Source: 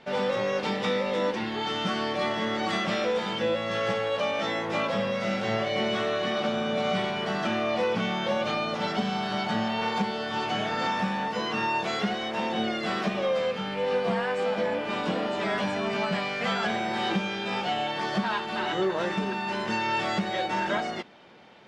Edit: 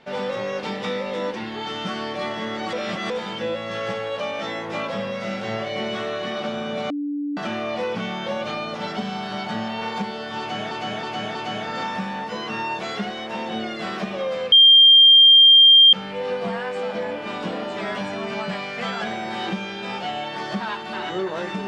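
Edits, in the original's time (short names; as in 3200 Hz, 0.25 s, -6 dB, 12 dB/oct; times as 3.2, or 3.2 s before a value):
2.73–3.1 reverse
6.9–7.37 bleep 290 Hz -23.5 dBFS
10.39–10.71 loop, 4 plays
13.56 add tone 3190 Hz -7.5 dBFS 1.41 s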